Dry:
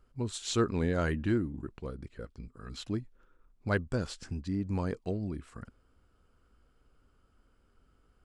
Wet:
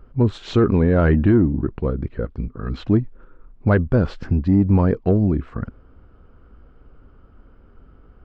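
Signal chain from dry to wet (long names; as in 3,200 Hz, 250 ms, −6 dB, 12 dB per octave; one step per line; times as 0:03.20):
in parallel at −4 dB: soft clipping −30 dBFS, distortion −9 dB
on the sum: head-to-tape spacing loss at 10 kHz 44 dB
boost into a limiter +21.5 dB
level −6.5 dB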